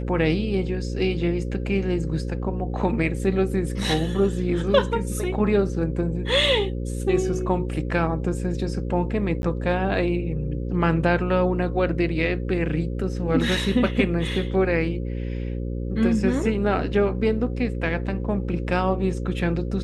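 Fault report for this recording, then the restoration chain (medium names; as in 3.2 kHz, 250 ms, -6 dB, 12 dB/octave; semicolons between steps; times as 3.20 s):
buzz 60 Hz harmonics 9 -28 dBFS
9.42–9.43 s: dropout 11 ms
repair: de-hum 60 Hz, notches 9; interpolate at 9.42 s, 11 ms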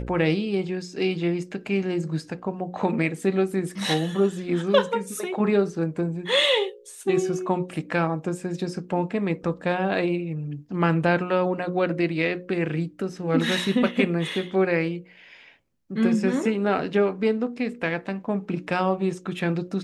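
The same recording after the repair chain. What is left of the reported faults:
nothing left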